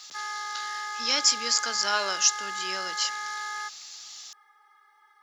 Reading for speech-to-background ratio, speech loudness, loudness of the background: 8.5 dB, -25.5 LUFS, -34.0 LUFS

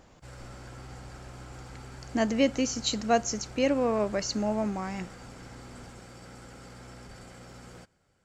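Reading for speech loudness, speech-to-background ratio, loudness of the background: -28.5 LUFS, 18.5 dB, -47.0 LUFS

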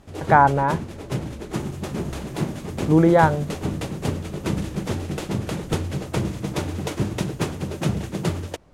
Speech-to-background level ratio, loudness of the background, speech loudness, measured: 9.0 dB, -28.0 LUFS, -19.0 LUFS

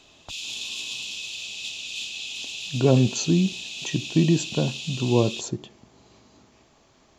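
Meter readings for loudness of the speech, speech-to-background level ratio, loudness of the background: -24.0 LUFS, 8.0 dB, -32.0 LUFS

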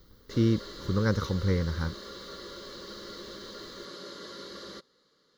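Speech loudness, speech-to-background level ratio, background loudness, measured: -29.0 LUFS, 13.5 dB, -42.5 LUFS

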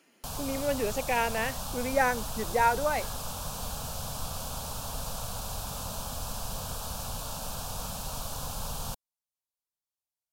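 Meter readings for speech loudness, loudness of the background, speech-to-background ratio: -29.5 LUFS, -36.0 LUFS, 6.5 dB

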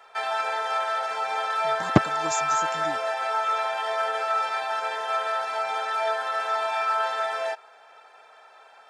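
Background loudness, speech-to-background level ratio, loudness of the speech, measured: -26.0 LUFS, -1.5 dB, -27.5 LUFS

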